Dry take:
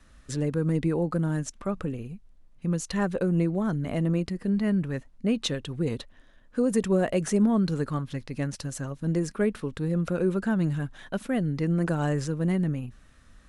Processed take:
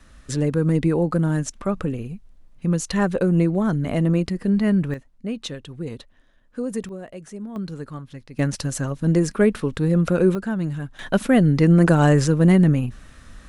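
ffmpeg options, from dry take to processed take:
-af "asetnsamples=n=441:p=0,asendcmd='4.94 volume volume -3dB;6.89 volume volume -12dB;7.56 volume volume -5dB;8.39 volume volume 8dB;10.35 volume volume 0.5dB;10.99 volume volume 11dB',volume=2"

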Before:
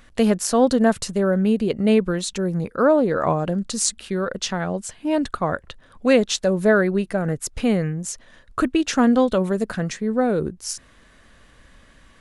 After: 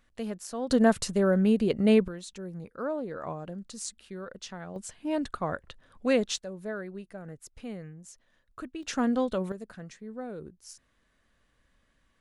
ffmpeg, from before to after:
-af "asetnsamples=n=441:p=0,asendcmd='0.7 volume volume -4dB;2.08 volume volume -16dB;4.76 volume volume -8.5dB;6.38 volume volume -19.5dB;8.83 volume volume -10dB;9.52 volume volume -18.5dB',volume=0.141"

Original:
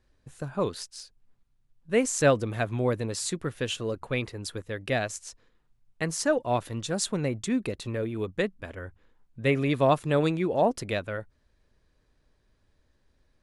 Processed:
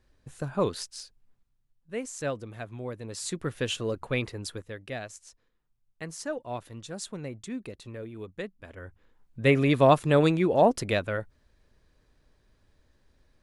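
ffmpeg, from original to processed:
-af "volume=16.8,afade=t=out:st=0.93:d=0.99:silence=0.251189,afade=t=in:st=2.99:d=0.53:silence=0.281838,afade=t=out:st=4.35:d=0.51:silence=0.334965,afade=t=in:st=8.58:d=0.91:silence=0.251189"

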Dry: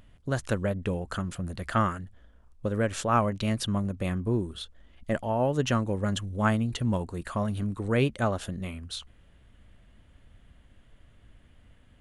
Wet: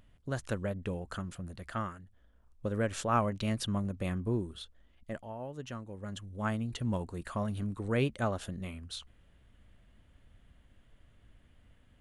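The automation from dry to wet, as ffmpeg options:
-af "volume=4.47,afade=t=out:st=1.13:d=0.89:silence=0.473151,afade=t=in:st=2.02:d=0.7:silence=0.375837,afade=t=out:st=4.29:d=1.1:silence=0.266073,afade=t=in:st=5.9:d=1.1:silence=0.281838"

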